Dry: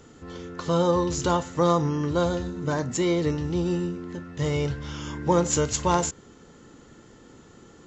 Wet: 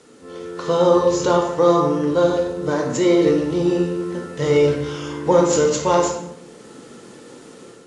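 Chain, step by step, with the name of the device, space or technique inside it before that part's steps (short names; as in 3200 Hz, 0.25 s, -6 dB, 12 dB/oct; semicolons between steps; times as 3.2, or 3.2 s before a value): filmed off a television (BPF 180–6900 Hz; bell 490 Hz +6 dB 0.55 oct; reverb RT60 0.85 s, pre-delay 15 ms, DRR 1.5 dB; white noise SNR 32 dB; AGC gain up to 7 dB; gain -1.5 dB; AAC 48 kbps 22050 Hz)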